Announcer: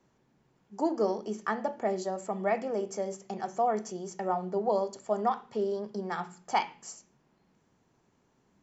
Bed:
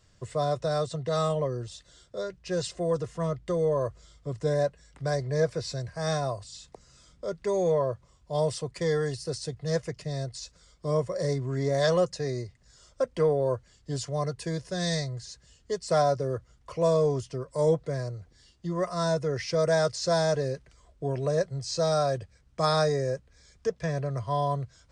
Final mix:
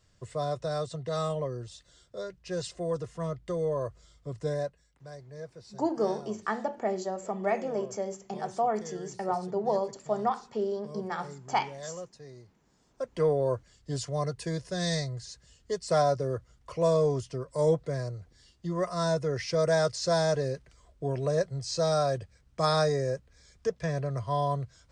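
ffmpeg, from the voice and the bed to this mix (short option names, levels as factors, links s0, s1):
-filter_complex "[0:a]adelay=5000,volume=1[s0];[1:a]volume=3.98,afade=t=out:st=4.46:d=0.52:silence=0.223872,afade=t=in:st=12.86:d=0.42:silence=0.158489[s1];[s0][s1]amix=inputs=2:normalize=0"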